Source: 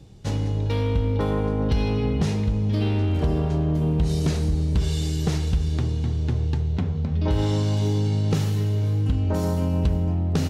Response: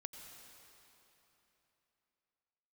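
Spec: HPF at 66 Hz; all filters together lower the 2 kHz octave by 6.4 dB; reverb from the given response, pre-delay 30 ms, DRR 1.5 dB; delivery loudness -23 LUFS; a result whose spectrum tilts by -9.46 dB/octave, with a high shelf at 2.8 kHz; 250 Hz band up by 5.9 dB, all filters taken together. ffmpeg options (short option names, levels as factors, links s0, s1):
-filter_complex "[0:a]highpass=66,equalizer=f=250:t=o:g=8.5,equalizer=f=2000:t=o:g=-7,highshelf=f=2800:g=-4,asplit=2[s0][s1];[1:a]atrim=start_sample=2205,adelay=30[s2];[s1][s2]afir=irnorm=-1:irlink=0,volume=1.33[s3];[s0][s3]amix=inputs=2:normalize=0,volume=0.631"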